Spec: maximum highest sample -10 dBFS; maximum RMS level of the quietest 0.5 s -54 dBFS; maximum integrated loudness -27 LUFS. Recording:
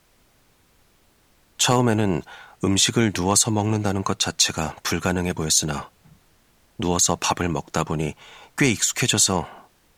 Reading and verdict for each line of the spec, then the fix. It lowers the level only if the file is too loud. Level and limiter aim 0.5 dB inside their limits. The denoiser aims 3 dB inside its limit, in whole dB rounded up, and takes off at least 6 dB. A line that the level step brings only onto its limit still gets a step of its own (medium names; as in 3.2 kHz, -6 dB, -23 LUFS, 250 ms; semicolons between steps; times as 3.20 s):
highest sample -5.0 dBFS: fail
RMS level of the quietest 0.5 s -60 dBFS: pass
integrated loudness -21.0 LUFS: fail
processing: trim -6.5 dB